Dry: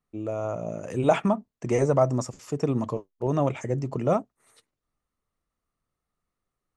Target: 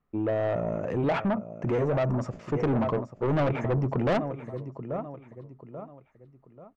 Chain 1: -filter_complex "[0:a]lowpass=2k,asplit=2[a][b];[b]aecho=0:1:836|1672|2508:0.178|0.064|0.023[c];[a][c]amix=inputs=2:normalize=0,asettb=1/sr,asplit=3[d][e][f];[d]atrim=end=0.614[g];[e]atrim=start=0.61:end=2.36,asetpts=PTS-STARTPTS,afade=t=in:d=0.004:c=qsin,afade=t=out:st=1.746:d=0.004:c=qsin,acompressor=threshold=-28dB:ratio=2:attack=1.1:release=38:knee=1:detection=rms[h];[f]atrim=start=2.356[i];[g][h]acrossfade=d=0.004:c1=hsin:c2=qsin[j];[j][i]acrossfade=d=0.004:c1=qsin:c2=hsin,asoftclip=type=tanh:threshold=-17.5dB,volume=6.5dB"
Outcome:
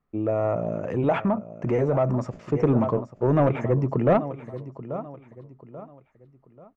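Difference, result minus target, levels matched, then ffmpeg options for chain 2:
soft clip: distortion -9 dB
-filter_complex "[0:a]lowpass=2k,asplit=2[a][b];[b]aecho=0:1:836|1672|2508:0.178|0.064|0.023[c];[a][c]amix=inputs=2:normalize=0,asettb=1/sr,asplit=3[d][e][f];[d]atrim=end=0.614[g];[e]atrim=start=0.61:end=2.36,asetpts=PTS-STARTPTS,afade=t=in:d=0.004:c=qsin,afade=t=out:st=1.746:d=0.004:c=qsin,acompressor=threshold=-28dB:ratio=2:attack=1.1:release=38:knee=1:detection=rms[h];[f]atrim=start=2.356[i];[g][h]acrossfade=d=0.004:c1=hsin:c2=qsin[j];[j][i]acrossfade=d=0.004:c1=qsin:c2=hsin,asoftclip=type=tanh:threshold=-27.5dB,volume=6.5dB"

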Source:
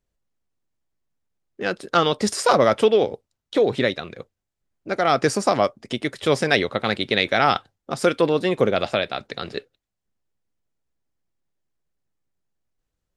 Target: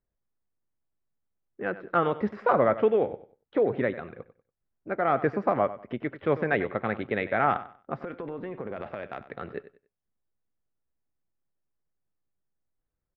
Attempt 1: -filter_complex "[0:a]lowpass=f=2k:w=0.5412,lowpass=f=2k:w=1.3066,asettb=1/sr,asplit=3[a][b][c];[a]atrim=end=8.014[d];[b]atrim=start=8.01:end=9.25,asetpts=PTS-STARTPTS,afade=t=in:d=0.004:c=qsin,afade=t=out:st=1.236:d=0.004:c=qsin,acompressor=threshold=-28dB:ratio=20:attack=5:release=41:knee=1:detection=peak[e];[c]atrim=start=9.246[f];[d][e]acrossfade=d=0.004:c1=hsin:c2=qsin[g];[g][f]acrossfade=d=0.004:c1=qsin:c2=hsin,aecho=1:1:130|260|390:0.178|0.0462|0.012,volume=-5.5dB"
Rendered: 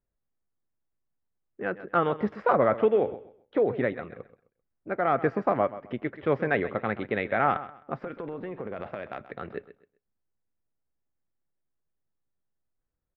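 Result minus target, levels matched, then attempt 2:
echo 35 ms late
-filter_complex "[0:a]lowpass=f=2k:w=0.5412,lowpass=f=2k:w=1.3066,asettb=1/sr,asplit=3[a][b][c];[a]atrim=end=8.014[d];[b]atrim=start=8.01:end=9.25,asetpts=PTS-STARTPTS,afade=t=in:d=0.004:c=qsin,afade=t=out:st=1.236:d=0.004:c=qsin,acompressor=threshold=-28dB:ratio=20:attack=5:release=41:knee=1:detection=peak[e];[c]atrim=start=9.246[f];[d][e]acrossfade=d=0.004:c1=hsin:c2=qsin[g];[g][f]acrossfade=d=0.004:c1=qsin:c2=hsin,aecho=1:1:95|190|285:0.178|0.0462|0.012,volume=-5.5dB"

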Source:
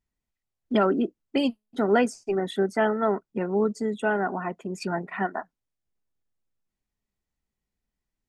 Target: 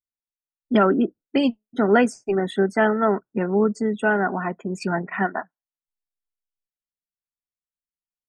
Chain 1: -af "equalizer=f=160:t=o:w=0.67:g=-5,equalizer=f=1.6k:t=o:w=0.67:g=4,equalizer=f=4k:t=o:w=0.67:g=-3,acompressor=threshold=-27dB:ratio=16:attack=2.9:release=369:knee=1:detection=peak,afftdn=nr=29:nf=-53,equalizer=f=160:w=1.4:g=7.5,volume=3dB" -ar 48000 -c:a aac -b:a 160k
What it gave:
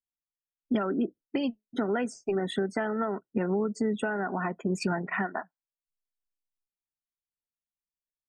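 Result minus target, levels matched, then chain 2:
compressor: peak gain reduction +14 dB
-af "equalizer=f=160:t=o:w=0.67:g=-5,equalizer=f=1.6k:t=o:w=0.67:g=4,equalizer=f=4k:t=o:w=0.67:g=-3,afftdn=nr=29:nf=-53,equalizer=f=160:w=1.4:g=7.5,volume=3dB" -ar 48000 -c:a aac -b:a 160k

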